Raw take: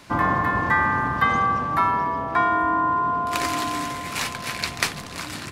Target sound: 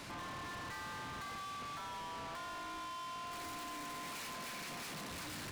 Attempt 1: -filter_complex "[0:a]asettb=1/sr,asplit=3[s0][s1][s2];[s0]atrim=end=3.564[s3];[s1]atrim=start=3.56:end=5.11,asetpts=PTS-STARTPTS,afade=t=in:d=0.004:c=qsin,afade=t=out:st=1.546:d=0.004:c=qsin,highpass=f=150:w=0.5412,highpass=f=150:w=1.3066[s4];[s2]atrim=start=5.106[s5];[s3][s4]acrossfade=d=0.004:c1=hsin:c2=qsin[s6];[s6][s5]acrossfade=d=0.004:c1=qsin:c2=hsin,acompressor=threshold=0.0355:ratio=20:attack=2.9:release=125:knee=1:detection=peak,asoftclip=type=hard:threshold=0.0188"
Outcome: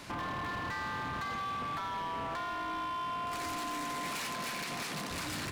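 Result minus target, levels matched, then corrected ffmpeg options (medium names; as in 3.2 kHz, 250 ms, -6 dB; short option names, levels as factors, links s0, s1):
hard clipper: distortion -5 dB
-filter_complex "[0:a]asettb=1/sr,asplit=3[s0][s1][s2];[s0]atrim=end=3.564[s3];[s1]atrim=start=3.56:end=5.11,asetpts=PTS-STARTPTS,afade=t=in:d=0.004:c=qsin,afade=t=out:st=1.546:d=0.004:c=qsin,highpass=f=150:w=0.5412,highpass=f=150:w=1.3066[s4];[s2]atrim=start=5.106[s5];[s3][s4]acrossfade=d=0.004:c1=hsin:c2=qsin[s6];[s6][s5]acrossfade=d=0.004:c1=qsin:c2=hsin,acompressor=threshold=0.0355:ratio=20:attack=2.9:release=125:knee=1:detection=peak,asoftclip=type=hard:threshold=0.00631"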